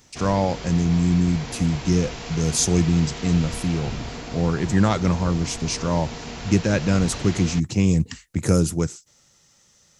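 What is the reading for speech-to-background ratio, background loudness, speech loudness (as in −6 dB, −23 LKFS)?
12.0 dB, −34.0 LKFS, −22.0 LKFS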